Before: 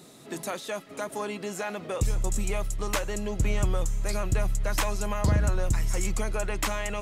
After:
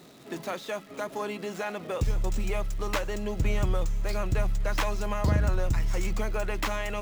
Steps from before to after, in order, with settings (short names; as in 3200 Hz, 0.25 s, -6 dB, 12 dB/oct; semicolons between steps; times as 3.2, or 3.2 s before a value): median filter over 5 samples; notches 50/100/150/200 Hz; crackle 240/s -43 dBFS